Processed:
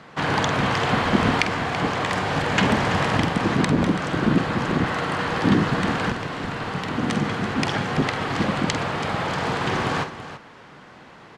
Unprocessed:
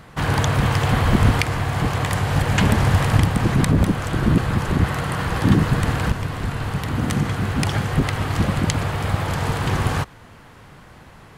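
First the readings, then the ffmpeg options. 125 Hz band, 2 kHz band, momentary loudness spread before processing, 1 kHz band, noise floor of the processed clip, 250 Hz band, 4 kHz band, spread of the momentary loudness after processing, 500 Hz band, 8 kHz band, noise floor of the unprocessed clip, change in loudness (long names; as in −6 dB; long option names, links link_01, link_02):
−8.0 dB, +1.5 dB, 6 LU, +1.5 dB, −46 dBFS, −0.5 dB, +1.0 dB, 7 LU, +1.5 dB, −5.0 dB, −45 dBFS, −2.0 dB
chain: -filter_complex "[0:a]acrossover=split=160 6900:gain=0.126 1 0.0708[link_01][link_02][link_03];[link_01][link_02][link_03]amix=inputs=3:normalize=0,aecho=1:1:48|332:0.316|0.237,volume=1dB"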